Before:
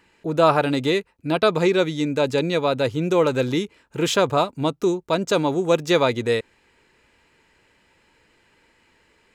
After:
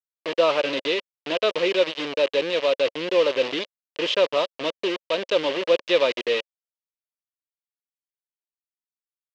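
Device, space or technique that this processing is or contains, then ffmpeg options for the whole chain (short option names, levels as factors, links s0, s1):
hand-held game console: -af "acrusher=bits=3:mix=0:aa=0.000001,highpass=410,equalizer=f=550:t=q:w=4:g=8,equalizer=f=790:t=q:w=4:g=-10,equalizer=f=1400:t=q:w=4:g=-7,equalizer=f=2900:t=q:w=4:g=8,lowpass=f=4600:w=0.5412,lowpass=f=4600:w=1.3066,volume=0.708"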